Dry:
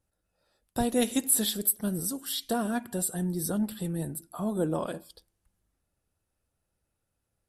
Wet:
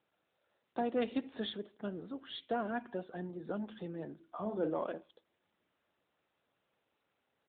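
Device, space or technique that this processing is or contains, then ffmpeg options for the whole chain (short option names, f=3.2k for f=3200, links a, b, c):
telephone: -filter_complex "[0:a]highpass=f=94:p=1,asplit=3[a][b][c];[a]afade=t=out:st=4.26:d=0.02[d];[b]asplit=2[e][f];[f]adelay=43,volume=-8dB[g];[e][g]amix=inputs=2:normalize=0,afade=t=in:st=4.26:d=0.02,afade=t=out:st=4.7:d=0.02[h];[c]afade=t=in:st=4.7:d=0.02[i];[d][h][i]amix=inputs=3:normalize=0,highpass=290,lowpass=3k,asoftclip=type=tanh:threshold=-20dB,volume=-2.5dB" -ar 8000 -c:a libopencore_amrnb -b:a 12200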